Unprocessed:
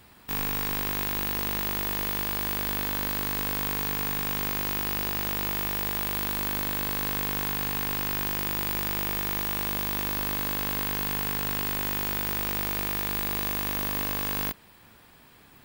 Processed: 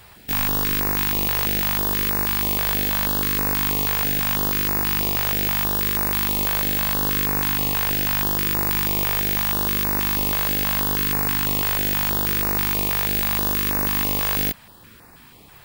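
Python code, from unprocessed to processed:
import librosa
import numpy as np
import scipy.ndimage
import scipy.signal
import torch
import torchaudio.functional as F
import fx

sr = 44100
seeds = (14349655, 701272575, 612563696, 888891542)

y = fx.filter_held_notch(x, sr, hz=6.2, low_hz=260.0, high_hz=3200.0)
y = y * 10.0 ** (8.0 / 20.0)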